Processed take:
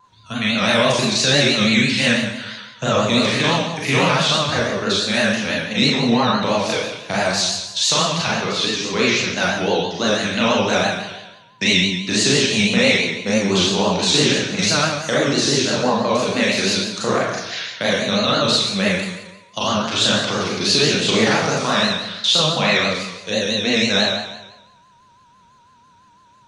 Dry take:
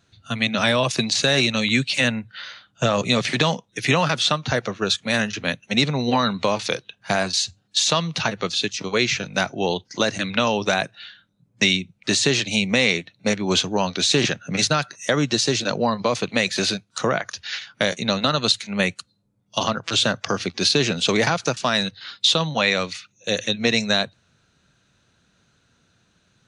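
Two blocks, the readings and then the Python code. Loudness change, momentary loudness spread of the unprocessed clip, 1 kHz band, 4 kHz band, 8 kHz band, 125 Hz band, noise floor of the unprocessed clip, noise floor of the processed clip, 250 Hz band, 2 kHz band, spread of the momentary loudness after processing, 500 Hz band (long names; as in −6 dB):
+4.0 dB, 7 LU, +3.5 dB, +4.0 dB, +3.5 dB, +3.0 dB, −66 dBFS, −52 dBFS, +4.5 dB, +3.5 dB, 8 LU, +4.0 dB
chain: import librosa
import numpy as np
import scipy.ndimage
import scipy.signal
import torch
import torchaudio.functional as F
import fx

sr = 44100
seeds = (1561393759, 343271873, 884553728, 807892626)

y = x + 10.0 ** (-47.0 / 20.0) * np.sin(2.0 * np.pi * 990.0 * np.arange(len(x)) / sr)
y = fx.rev_schroeder(y, sr, rt60_s=1.0, comb_ms=29, drr_db=-7.0)
y = fx.vibrato(y, sr, rate_hz=6.0, depth_cents=91.0)
y = F.gain(torch.from_numpy(y), -4.0).numpy()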